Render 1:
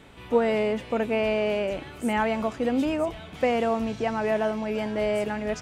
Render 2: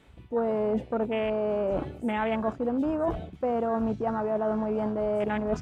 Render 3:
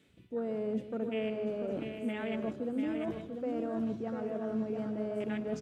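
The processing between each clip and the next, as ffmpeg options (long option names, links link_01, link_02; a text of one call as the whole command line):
ffmpeg -i in.wav -af "areverse,acompressor=threshold=-32dB:ratio=12,areverse,afwtdn=0.01,volume=8dB" out.wav
ffmpeg -i in.wav -filter_complex "[0:a]highpass=160,equalizer=frequency=930:width_type=o:width=1.3:gain=-15,asplit=2[link_01][link_02];[link_02]aecho=0:1:155|693|859:0.224|0.501|0.188[link_03];[link_01][link_03]amix=inputs=2:normalize=0,volume=-3.5dB" out.wav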